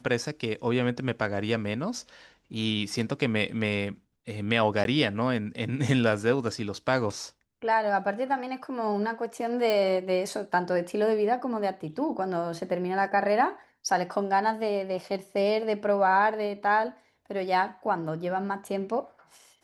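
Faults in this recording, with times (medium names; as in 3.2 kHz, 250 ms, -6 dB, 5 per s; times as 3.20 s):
4.84–4.85 s: dropout 12 ms
9.70 s: pop -14 dBFS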